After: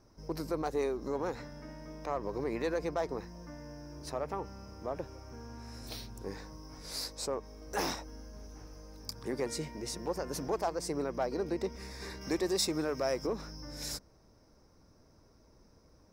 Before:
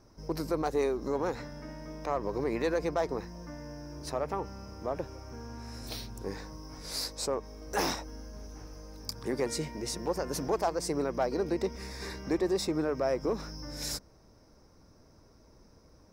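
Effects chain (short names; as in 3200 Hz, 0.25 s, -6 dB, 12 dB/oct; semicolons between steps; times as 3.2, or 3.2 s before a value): 12.21–13.27 high shelf 2500 Hz +11 dB; gain -3.5 dB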